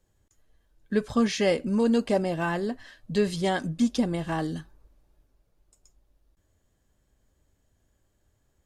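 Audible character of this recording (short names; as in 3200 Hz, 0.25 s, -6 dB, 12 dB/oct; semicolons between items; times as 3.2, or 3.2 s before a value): noise floor -72 dBFS; spectral tilt -5.0 dB/oct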